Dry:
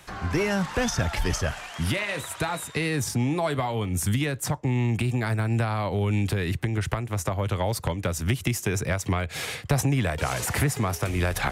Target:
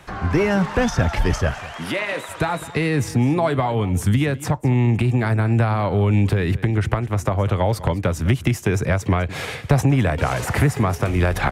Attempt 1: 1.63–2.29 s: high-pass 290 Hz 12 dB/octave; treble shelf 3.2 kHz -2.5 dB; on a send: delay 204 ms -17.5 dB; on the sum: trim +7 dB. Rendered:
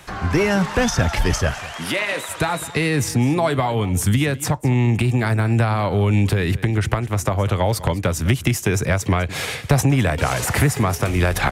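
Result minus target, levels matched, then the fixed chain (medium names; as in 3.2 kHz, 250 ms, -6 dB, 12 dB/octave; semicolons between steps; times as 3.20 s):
8 kHz band +7.0 dB
1.63–2.29 s: high-pass 290 Hz 12 dB/octave; treble shelf 3.2 kHz -11.5 dB; on a send: delay 204 ms -17.5 dB; on the sum: trim +7 dB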